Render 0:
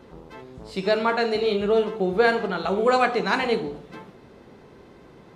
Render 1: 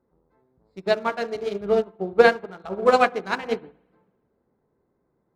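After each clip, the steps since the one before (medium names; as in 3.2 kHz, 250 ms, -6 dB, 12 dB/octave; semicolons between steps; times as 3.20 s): local Wiener filter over 15 samples; spring tank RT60 1.4 s, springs 59 ms, chirp 65 ms, DRR 13 dB; upward expansion 2.5:1, over -34 dBFS; trim +6 dB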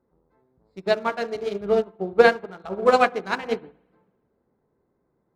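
no audible change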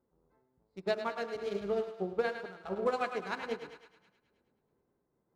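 compression 6:1, threshold -20 dBFS, peak gain reduction 11 dB; thinning echo 106 ms, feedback 59%, high-pass 530 Hz, level -8.5 dB; random flutter of the level, depth 60%; trim -5 dB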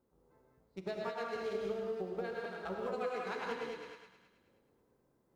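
compression 10:1, threshold -39 dBFS, peak gain reduction 14 dB; short-mantissa float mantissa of 6-bit; gated-style reverb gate 220 ms rising, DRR -0.5 dB; trim +1.5 dB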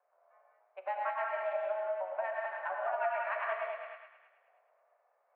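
mistuned SSB +190 Hz 420–2300 Hz; trim +5.5 dB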